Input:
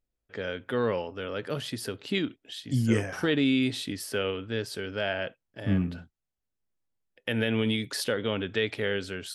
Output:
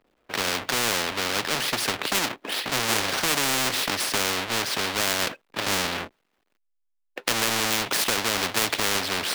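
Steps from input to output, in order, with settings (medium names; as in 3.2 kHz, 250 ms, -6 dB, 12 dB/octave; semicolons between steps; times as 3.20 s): square wave that keeps the level; three-band isolator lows -22 dB, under 230 Hz, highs -16 dB, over 3.7 kHz; spectrum-flattening compressor 4:1; trim +4 dB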